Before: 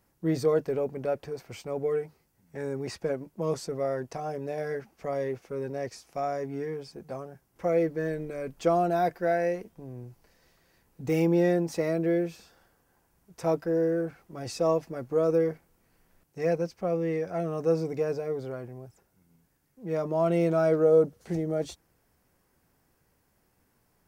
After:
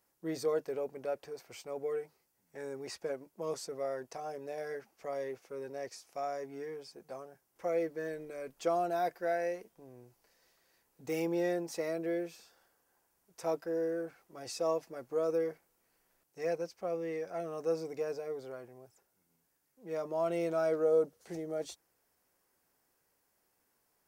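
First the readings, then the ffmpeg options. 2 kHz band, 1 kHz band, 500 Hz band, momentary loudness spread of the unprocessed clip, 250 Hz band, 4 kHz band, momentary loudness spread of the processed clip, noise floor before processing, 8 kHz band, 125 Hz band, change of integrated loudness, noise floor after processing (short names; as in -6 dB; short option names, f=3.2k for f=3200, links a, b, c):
-6.0 dB, -6.0 dB, -7.0 dB, 15 LU, -10.5 dB, -3.5 dB, 14 LU, -71 dBFS, -2.5 dB, -16.5 dB, -7.5 dB, -77 dBFS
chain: -af "bass=f=250:g=-13,treble=f=4k:g=4,volume=-6dB"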